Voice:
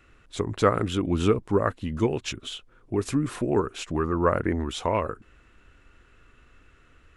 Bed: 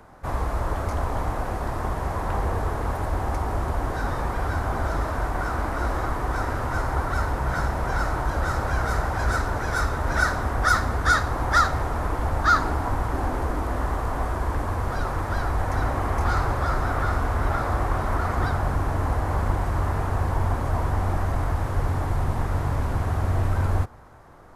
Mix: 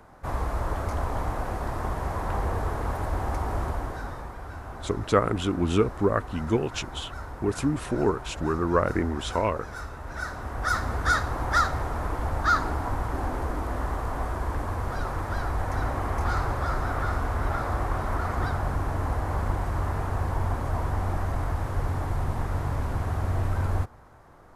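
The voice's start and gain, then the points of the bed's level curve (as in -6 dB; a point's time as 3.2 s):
4.50 s, -0.5 dB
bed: 3.64 s -2.5 dB
4.37 s -13 dB
10.11 s -13 dB
10.92 s -3.5 dB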